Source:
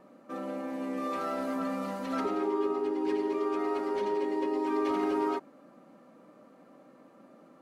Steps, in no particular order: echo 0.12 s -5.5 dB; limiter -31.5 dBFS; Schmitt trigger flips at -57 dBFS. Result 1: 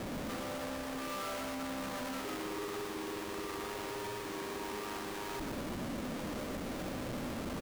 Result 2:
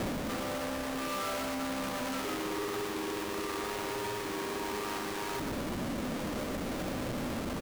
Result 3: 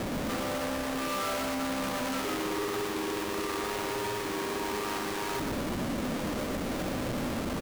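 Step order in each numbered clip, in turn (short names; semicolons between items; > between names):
limiter > Schmitt trigger > echo; Schmitt trigger > echo > limiter; Schmitt trigger > limiter > echo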